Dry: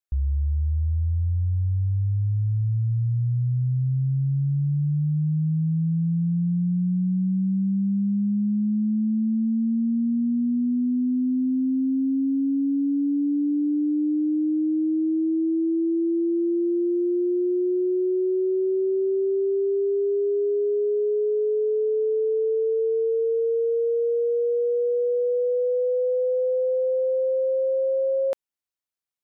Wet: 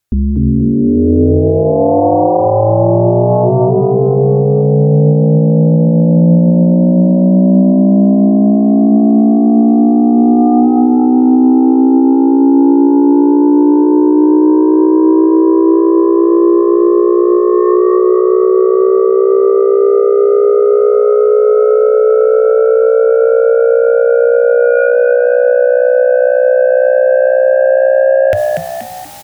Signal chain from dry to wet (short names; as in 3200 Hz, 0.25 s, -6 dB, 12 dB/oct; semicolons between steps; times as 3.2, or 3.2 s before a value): bell 99 Hz +14.5 dB 0.87 oct; reverse; upward compressor, threshold -20 dBFS; reverse; resonator 120 Hz, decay 1.9 s, mix 50%; sine folder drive 14 dB, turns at -10.5 dBFS; on a send: frequency-shifting echo 0.238 s, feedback 42%, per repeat +66 Hz, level -5 dB; on the sum: shoebox room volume 3000 m³, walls mixed, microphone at 0.31 m; maximiser +4 dB; gain -1 dB